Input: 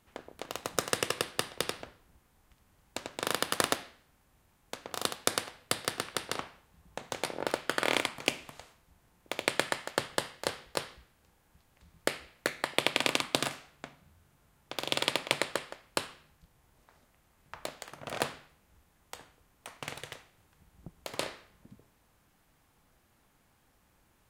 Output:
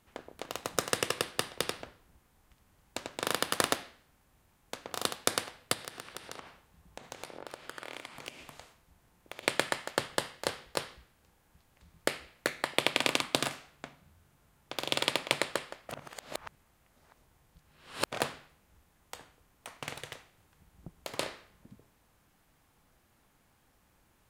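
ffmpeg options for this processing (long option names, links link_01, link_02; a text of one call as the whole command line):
ffmpeg -i in.wav -filter_complex "[0:a]asettb=1/sr,asplit=3[link_01][link_02][link_03];[link_01]atrim=end=5.734[link_04];[link_02]atrim=start=5.73:end=9.43,asetpts=PTS-STARTPTS,afade=type=in:duration=0.004:curve=qsin,afade=type=out:start_time=3.696:duration=0.004:curve=qsin,acompressor=threshold=-41dB:ratio=4:attack=3.2:release=140:knee=1:detection=peak[link_05];[link_03]atrim=start=9.426[link_06];[link_04][link_05]acrossfade=duration=0.004:curve1=hsin:curve2=qsin[link_07];[link_07][link_06]acrossfade=duration=0.004:curve1=qsin:curve2=hsin,asplit=3[link_08][link_09][link_10];[link_08]atrim=end=15.892[link_11];[link_09]atrim=start=15.888:end=18.122,asetpts=PTS-STARTPTS,areverse[link_12];[link_10]atrim=start=18.118[link_13];[link_11][link_12]acrossfade=duration=0.004:curve1=hsin:curve2=hsin[link_14];[link_14][link_13]acrossfade=duration=0.004:curve1=hsin:curve2=hsin" out.wav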